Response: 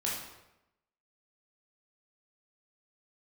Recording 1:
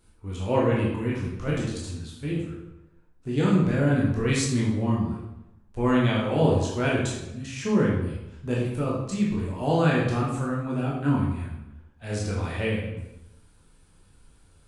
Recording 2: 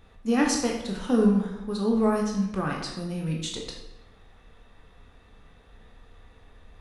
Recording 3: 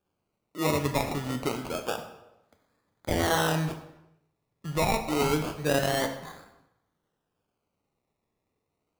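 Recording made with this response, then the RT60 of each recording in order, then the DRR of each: 1; 0.90 s, 0.90 s, 0.90 s; -5.5 dB, -0.5 dB, 6.0 dB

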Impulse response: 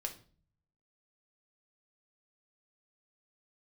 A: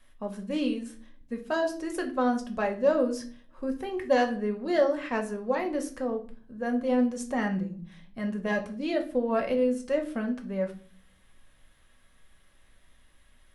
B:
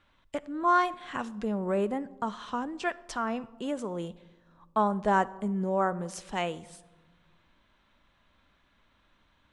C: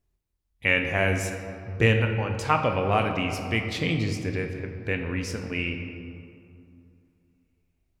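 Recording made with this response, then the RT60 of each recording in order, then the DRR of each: A; 0.40 s, no single decay rate, 2.6 s; 3.5 dB, 15.5 dB, 4.0 dB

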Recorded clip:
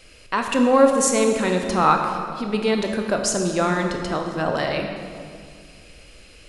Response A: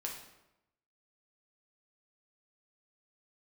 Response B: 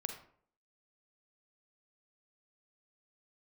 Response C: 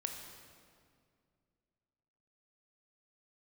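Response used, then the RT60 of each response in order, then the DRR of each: C; 0.90 s, 0.60 s, 2.2 s; -1.0 dB, 5.0 dB, 3.0 dB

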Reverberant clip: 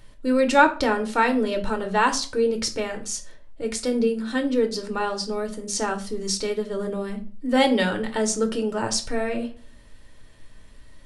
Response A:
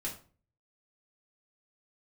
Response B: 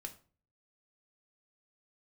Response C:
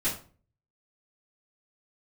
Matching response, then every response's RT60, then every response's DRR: B; 0.40 s, 0.40 s, 0.40 s; -4.0 dB, 4.5 dB, -12.5 dB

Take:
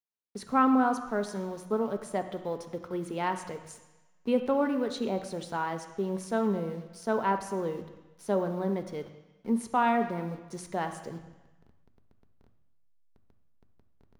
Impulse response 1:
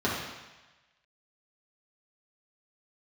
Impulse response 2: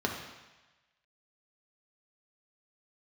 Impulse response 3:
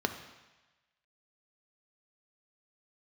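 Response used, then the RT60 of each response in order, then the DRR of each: 3; 1.1 s, 1.1 s, 1.1 s; -7.5 dB, 0.0 dB, 6.5 dB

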